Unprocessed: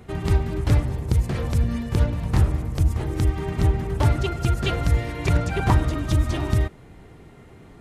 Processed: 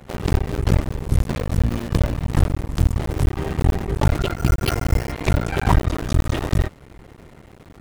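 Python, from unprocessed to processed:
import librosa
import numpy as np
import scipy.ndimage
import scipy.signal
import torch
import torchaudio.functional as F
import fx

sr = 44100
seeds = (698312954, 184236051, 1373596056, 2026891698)

y = fx.cycle_switch(x, sr, every=2, mode='muted')
y = fx.resample_bad(y, sr, factor=6, down='filtered', up='hold', at=(4.37, 5.12))
y = y * 10.0 ** (4.5 / 20.0)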